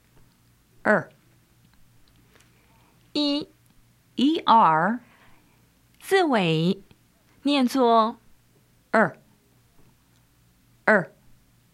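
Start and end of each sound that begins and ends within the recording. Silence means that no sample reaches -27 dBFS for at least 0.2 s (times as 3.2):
0.85–1.02
3.16–3.42
4.19–4.96
6.09–6.73
7.46–8.11
8.94–9.08
10.88–11.03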